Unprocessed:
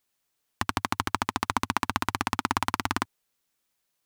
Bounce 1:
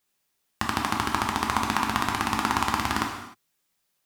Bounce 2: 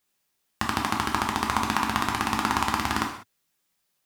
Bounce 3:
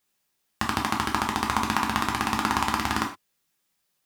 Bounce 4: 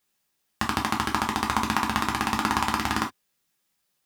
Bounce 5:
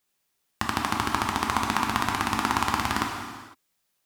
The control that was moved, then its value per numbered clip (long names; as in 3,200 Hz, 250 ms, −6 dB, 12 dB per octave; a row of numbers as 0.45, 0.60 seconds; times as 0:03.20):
reverb whose tail is shaped and stops, gate: 330, 220, 140, 90, 530 milliseconds